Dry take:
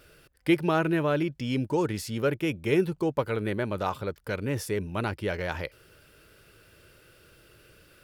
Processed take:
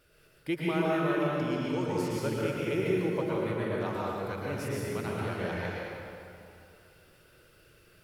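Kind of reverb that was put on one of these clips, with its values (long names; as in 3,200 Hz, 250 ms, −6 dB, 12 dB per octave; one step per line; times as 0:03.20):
dense smooth reverb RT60 2.6 s, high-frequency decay 0.7×, pre-delay 100 ms, DRR −5.5 dB
level −9.5 dB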